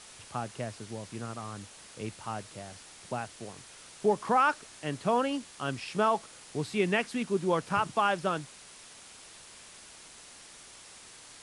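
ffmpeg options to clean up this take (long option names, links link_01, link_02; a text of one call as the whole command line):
ffmpeg -i in.wav -af "afwtdn=0.004" out.wav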